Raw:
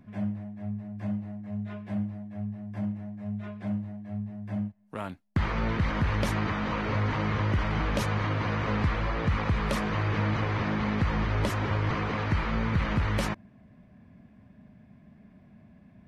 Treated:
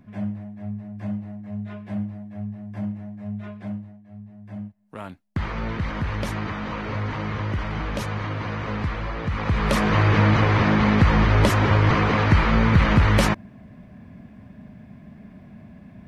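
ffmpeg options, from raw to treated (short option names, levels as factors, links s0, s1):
-af "volume=11.9,afade=t=out:st=3.52:d=0.5:silence=0.266073,afade=t=in:st=4.02:d=1.08:silence=0.354813,afade=t=in:st=9.32:d=0.64:silence=0.316228"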